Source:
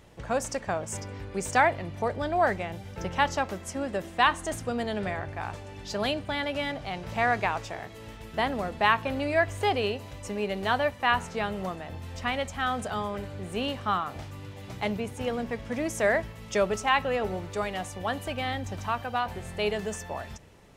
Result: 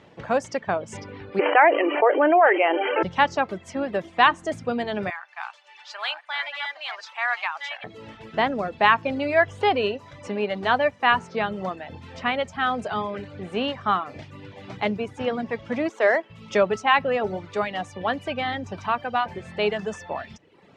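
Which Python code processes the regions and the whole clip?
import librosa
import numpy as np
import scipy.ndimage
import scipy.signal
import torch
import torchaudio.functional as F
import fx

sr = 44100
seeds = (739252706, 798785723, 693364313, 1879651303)

y = fx.chain(x, sr, fx.brickwall_bandpass(low_hz=280.0, high_hz=3200.0),
    fx.env_flatten(amount_pct=70), at=(1.39, 3.03))
y = fx.chain(y, sr, fx.reverse_delay(ms=687, wet_db=-3.0),
    fx.highpass(hz=940.0, slope=24),
    fx.tremolo(hz=3.1, depth=0.28), at=(5.1, 7.84))
y = fx.chain(y, sr, fx.median_filter(points=9),
    fx.highpass(hz=290.0, slope=24), at=(15.89, 16.3))
y = scipy.signal.sosfilt(scipy.signal.butter(2, 3800.0, 'lowpass', fs=sr, output='sos'), y)
y = fx.dereverb_blind(y, sr, rt60_s=0.7)
y = scipy.signal.sosfilt(scipy.signal.butter(2, 140.0, 'highpass', fs=sr, output='sos'), y)
y = y * 10.0 ** (5.5 / 20.0)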